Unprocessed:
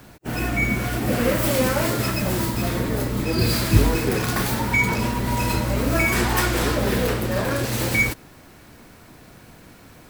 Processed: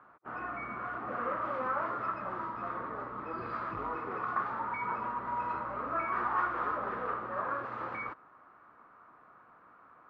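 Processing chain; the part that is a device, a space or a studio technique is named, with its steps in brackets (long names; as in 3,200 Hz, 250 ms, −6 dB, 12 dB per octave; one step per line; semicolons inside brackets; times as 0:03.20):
overdriven synthesiser ladder filter (soft clipping −12 dBFS, distortion −17 dB; transistor ladder low-pass 1,300 Hz, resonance 75%)
low-shelf EQ 450 Hz −4 dB
0:03.72–0:04.36: notch filter 1,600 Hz, Q 10
RIAA equalisation recording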